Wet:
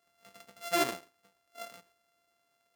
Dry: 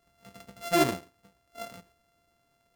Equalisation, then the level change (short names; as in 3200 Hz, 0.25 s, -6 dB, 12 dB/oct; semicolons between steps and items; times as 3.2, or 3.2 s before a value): HPF 640 Hz 6 dB/oct; notch 910 Hz, Q 27; -2.0 dB